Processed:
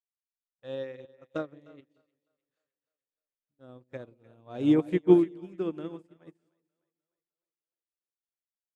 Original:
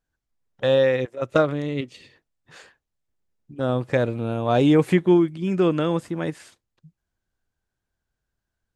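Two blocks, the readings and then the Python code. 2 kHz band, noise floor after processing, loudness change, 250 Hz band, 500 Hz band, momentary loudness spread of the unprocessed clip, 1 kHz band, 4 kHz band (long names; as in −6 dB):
−17.0 dB, below −85 dBFS, −5.0 dB, −6.0 dB, −10.0 dB, 12 LU, −16.0 dB, below −15 dB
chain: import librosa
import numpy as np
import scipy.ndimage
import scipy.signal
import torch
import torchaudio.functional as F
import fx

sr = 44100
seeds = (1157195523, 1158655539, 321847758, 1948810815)

y = fx.dynamic_eq(x, sr, hz=320.0, q=2.0, threshold_db=-31.0, ratio=4.0, max_db=7)
y = fx.echo_split(y, sr, split_hz=470.0, low_ms=174, high_ms=303, feedback_pct=52, wet_db=-9.5)
y = fx.upward_expand(y, sr, threshold_db=-32.0, expansion=2.5)
y = y * librosa.db_to_amplitude(-6.0)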